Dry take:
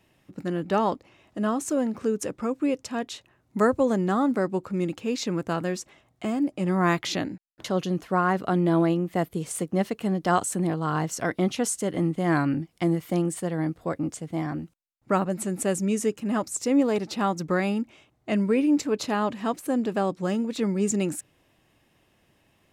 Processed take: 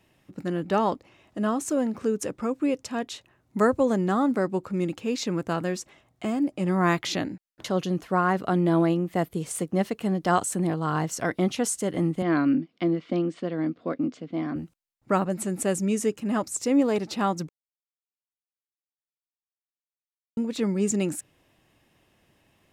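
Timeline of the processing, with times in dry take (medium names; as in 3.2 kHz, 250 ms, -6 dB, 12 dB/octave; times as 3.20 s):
12.22–14.56 s: cabinet simulation 220–4400 Hz, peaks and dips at 250 Hz +10 dB, 850 Hz -9 dB, 1.8 kHz -4 dB
17.49–20.37 s: mute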